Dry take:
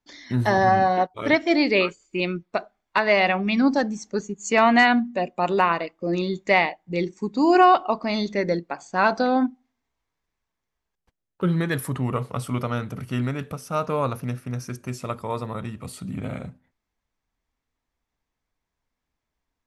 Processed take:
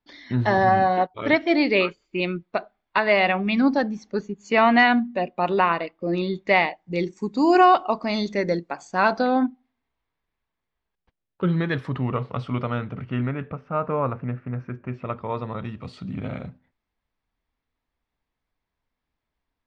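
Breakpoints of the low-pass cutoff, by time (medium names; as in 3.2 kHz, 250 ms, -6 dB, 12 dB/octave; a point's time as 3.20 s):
low-pass 24 dB/octave
6.45 s 4.4 kHz
7.17 s 8.7 kHz
8.84 s 8.7 kHz
9.28 s 4.2 kHz
12.36 s 4.2 kHz
13.68 s 2.2 kHz
14.80 s 2.2 kHz
15.75 s 4.7 kHz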